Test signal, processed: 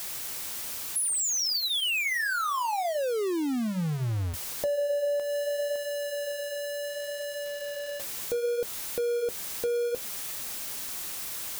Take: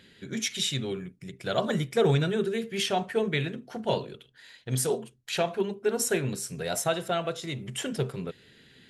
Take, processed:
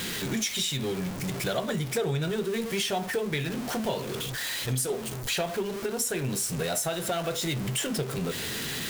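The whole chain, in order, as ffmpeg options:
-af "aeval=exprs='val(0)+0.5*0.0251*sgn(val(0))':c=same,highshelf=f=5500:g=5.5,acompressor=threshold=0.0316:ratio=4,flanger=delay=5.5:depth=7.2:regen=-67:speed=0.67:shape=sinusoidal,volume=2.24"

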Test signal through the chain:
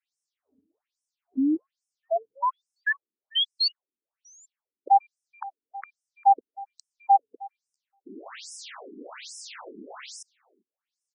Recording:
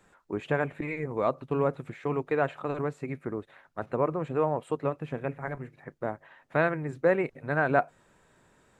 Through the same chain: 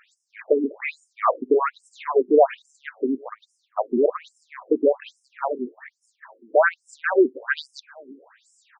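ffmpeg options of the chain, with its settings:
-filter_complex "[0:a]aeval=exprs='0.376*sin(PI/2*2.24*val(0)/0.376)':c=same,asplit=2[s0][s1];[s1]adelay=396.5,volume=0.0562,highshelf=f=4000:g=-8.92[s2];[s0][s2]amix=inputs=2:normalize=0,afftfilt=real='re*between(b*sr/1024,290*pow(7300/290,0.5+0.5*sin(2*PI*1.2*pts/sr))/1.41,290*pow(7300/290,0.5+0.5*sin(2*PI*1.2*pts/sr))*1.41)':imag='im*between(b*sr/1024,290*pow(7300/290,0.5+0.5*sin(2*PI*1.2*pts/sr))/1.41,290*pow(7300/290,0.5+0.5*sin(2*PI*1.2*pts/sr))*1.41)':win_size=1024:overlap=0.75,volume=1.58"

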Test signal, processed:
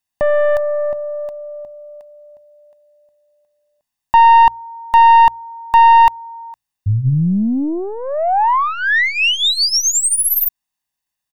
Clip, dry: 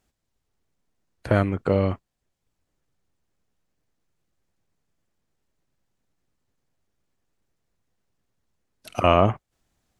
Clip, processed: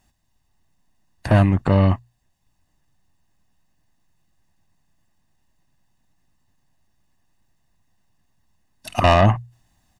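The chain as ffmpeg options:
-af "bandreject=f=60:t=h:w=6,bandreject=f=120:t=h:w=6,aeval=exprs='(tanh(5.62*val(0)+0.3)-tanh(0.3))/5.62':c=same,aecho=1:1:1.1:0.68,volume=2.24"

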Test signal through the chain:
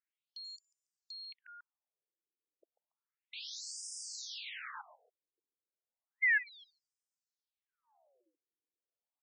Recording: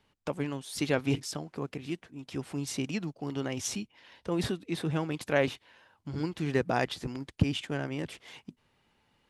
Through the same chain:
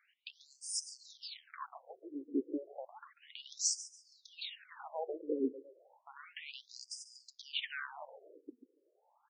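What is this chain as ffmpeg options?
-af "equalizer=f=120:w=0.95:g=11,acompressor=threshold=0.0562:ratio=2.5,asoftclip=type=tanh:threshold=0.0596,aecho=1:1:141|282:0.168|0.0403,afftfilt=real='re*between(b*sr/1024,360*pow(6900/360,0.5+0.5*sin(2*PI*0.32*pts/sr))/1.41,360*pow(6900/360,0.5+0.5*sin(2*PI*0.32*pts/sr))*1.41)':imag='im*between(b*sr/1024,360*pow(6900/360,0.5+0.5*sin(2*PI*0.32*pts/sr))/1.41,360*pow(6900/360,0.5+0.5*sin(2*PI*0.32*pts/sr))*1.41)':win_size=1024:overlap=0.75,volume=1.68"

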